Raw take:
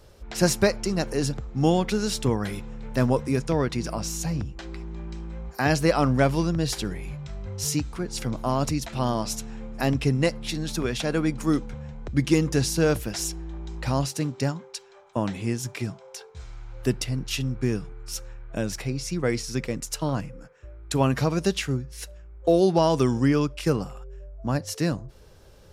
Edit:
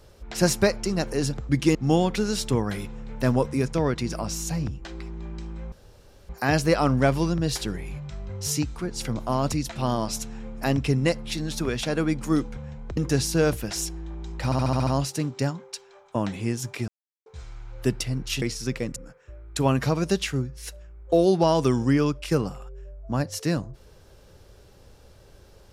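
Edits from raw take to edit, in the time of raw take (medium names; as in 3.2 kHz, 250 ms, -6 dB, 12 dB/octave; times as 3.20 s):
5.46 s: insert room tone 0.57 s
12.14–12.40 s: move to 1.49 s
13.88 s: stutter 0.07 s, 7 plays
15.89–16.27 s: mute
17.43–19.30 s: delete
19.84–20.31 s: delete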